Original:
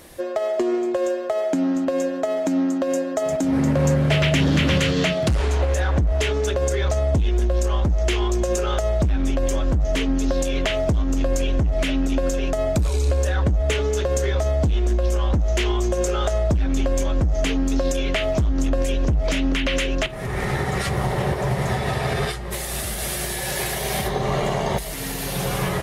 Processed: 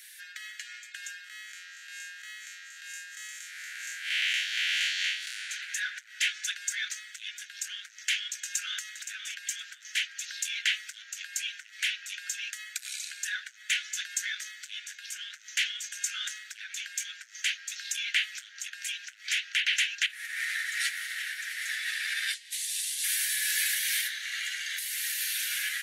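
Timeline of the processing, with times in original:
0:01.24–0:05.50: spectrum smeared in time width 117 ms
0:08.35–0:08.82: delay throw 520 ms, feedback 20%, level −9.5 dB
0:22.34–0:23.04: flat-topped band-pass 5,800 Hz, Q 0.76
whole clip: Butterworth high-pass 1,500 Hz 96 dB per octave; notch filter 5,100 Hz, Q 23

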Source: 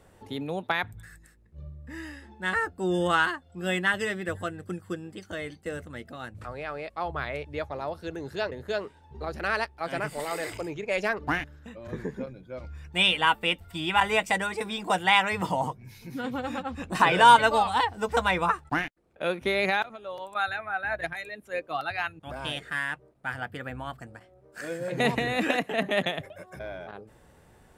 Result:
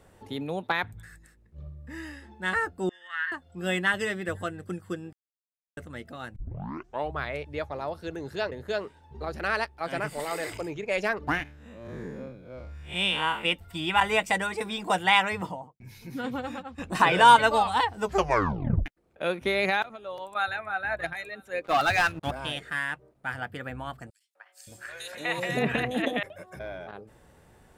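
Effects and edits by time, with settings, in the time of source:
0:00.67–0:01.77: highs frequency-modulated by the lows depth 0.19 ms
0:02.89–0:03.32: four-pole ladder band-pass 1,900 Hz, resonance 85%
0:05.13–0:05.77: silence
0:06.36: tape start 0.79 s
0:11.43–0:13.45: spectrum smeared in time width 128 ms
0:15.20–0:15.80: fade out and dull
0:16.33–0:16.78: fade out, to −11.5 dB
0:18.03: tape stop 0.83 s
0:20.02–0:20.62: delay throw 320 ms, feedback 50%, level −16.5 dB
0:21.64–0:22.31: leveller curve on the samples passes 3
0:24.10–0:26.23: three-band delay without the direct sound highs, mids, lows 250/570 ms, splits 750/3,700 Hz

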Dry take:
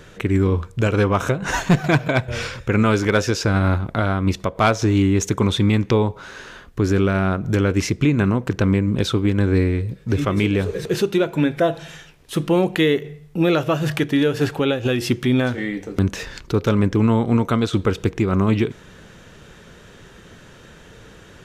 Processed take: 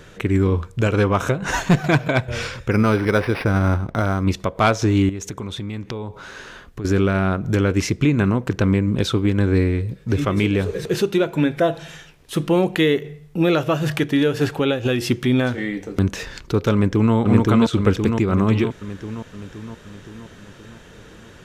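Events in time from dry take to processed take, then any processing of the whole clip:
0:02.71–0:04.24: linearly interpolated sample-rate reduction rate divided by 6×
0:05.09–0:06.85: downward compressor 5 to 1, threshold −27 dBFS
0:16.73–0:17.14: delay throw 520 ms, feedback 60%, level −0.5 dB

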